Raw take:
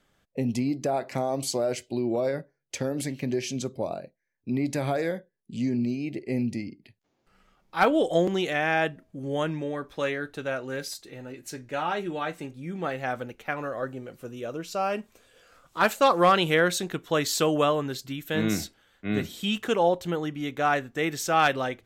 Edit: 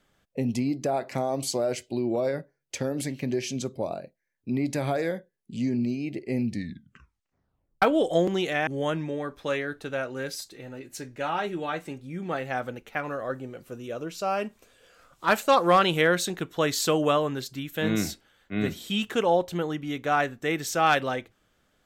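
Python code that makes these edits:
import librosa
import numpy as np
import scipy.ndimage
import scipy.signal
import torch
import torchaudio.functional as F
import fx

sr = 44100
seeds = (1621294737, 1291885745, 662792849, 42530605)

y = fx.edit(x, sr, fx.tape_stop(start_s=6.44, length_s=1.38),
    fx.cut(start_s=8.67, length_s=0.53), tone=tone)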